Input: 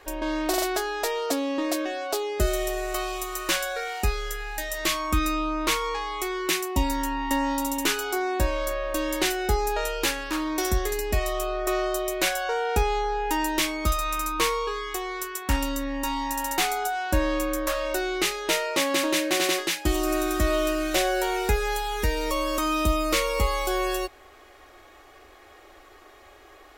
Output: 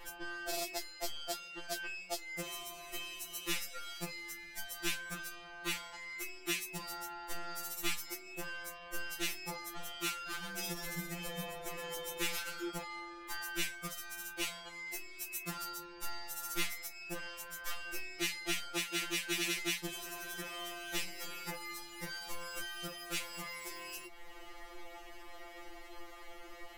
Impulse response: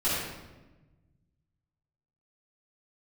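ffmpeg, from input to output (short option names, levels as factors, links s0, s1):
-filter_complex "[0:a]acrossover=split=150[s0][s1];[s0]acompressor=threshold=0.0224:ratio=6[s2];[s2][s1]amix=inputs=2:normalize=0,lowshelf=f=150:t=q:w=3:g=11,asettb=1/sr,asplit=3[s3][s4][s5];[s3]atrim=end=10.154[s6];[s4]atrim=start=10.15:end=12.7,asetpts=PTS-STARTPTS,afade=t=in:d=0.004:c=qsin,afade=t=out:st=2.546:d=0.004:c=qsin,asplit=5[s7][s8][s9][s10][s11];[s8]adelay=123,afreqshift=-120,volume=0.447[s12];[s9]adelay=246,afreqshift=-240,volume=0.166[s13];[s10]adelay=369,afreqshift=-360,volume=0.061[s14];[s11]adelay=492,afreqshift=-480,volume=0.0226[s15];[s7][s12][s13][s14][s15]amix=inputs=5:normalize=0,atrim=end_sample=112455[s16];[s5]atrim=start=12.696[s17];[s6][s16]acrossfade=d=0.004:c1=hsin:c2=qsin[s18];[s18][s17]acrossfade=d=0.004:c1=qsin:c2=hsin,asoftclip=type=tanh:threshold=0.0891,adynamicequalizer=threshold=0.00316:dfrequency=260:dqfactor=3.1:tfrequency=260:tqfactor=3.1:attack=5:release=100:ratio=0.375:range=3:mode=cutabove:tftype=bell,acompressor=threshold=0.0112:ratio=2,afftfilt=real='re*2.83*eq(mod(b,8),0)':imag='im*2.83*eq(mod(b,8),0)':win_size=2048:overlap=0.75,volume=1.33"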